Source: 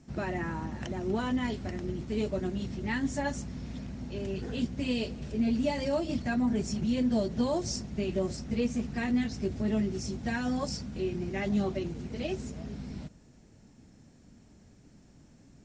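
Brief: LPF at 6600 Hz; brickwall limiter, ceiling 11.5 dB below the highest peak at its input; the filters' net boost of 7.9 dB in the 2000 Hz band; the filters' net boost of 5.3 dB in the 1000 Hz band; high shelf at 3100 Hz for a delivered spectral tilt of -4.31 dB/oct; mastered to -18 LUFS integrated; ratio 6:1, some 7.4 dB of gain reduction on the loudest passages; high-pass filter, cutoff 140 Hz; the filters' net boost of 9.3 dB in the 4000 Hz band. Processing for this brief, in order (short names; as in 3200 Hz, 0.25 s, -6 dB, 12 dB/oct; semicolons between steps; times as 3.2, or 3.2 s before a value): HPF 140 Hz; LPF 6600 Hz; bell 1000 Hz +5 dB; bell 2000 Hz +4.5 dB; high shelf 3100 Hz +7 dB; bell 4000 Hz +6 dB; compressor 6:1, threshold -31 dBFS; gain +20.5 dB; limiter -9.5 dBFS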